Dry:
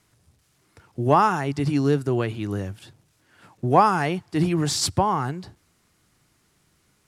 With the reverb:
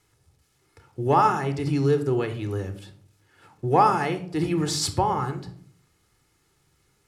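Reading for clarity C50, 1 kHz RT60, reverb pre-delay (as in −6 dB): 12.0 dB, 0.45 s, 30 ms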